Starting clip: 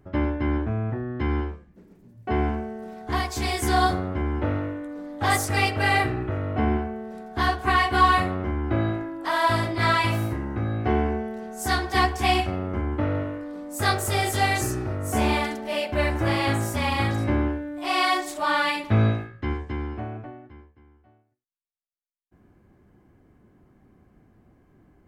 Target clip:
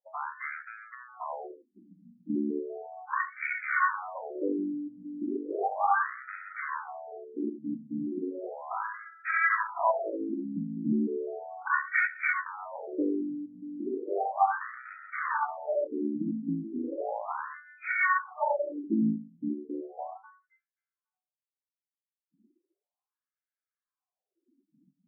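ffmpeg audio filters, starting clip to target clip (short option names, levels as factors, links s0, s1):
-af "aeval=exprs='0.473*(cos(1*acos(clip(val(0)/0.473,-1,1)))-cos(1*PI/2))+0.106*(cos(6*acos(clip(val(0)/0.473,-1,1)))-cos(6*PI/2))':c=same,afftdn=nr=27:nf=-45,afftfilt=real='re*between(b*sr/1024,210*pow(1800/210,0.5+0.5*sin(2*PI*0.35*pts/sr))/1.41,210*pow(1800/210,0.5+0.5*sin(2*PI*0.35*pts/sr))*1.41)':imag='im*between(b*sr/1024,210*pow(1800/210,0.5+0.5*sin(2*PI*0.35*pts/sr))/1.41,210*pow(1800/210,0.5+0.5*sin(2*PI*0.35*pts/sr))*1.41)':win_size=1024:overlap=0.75"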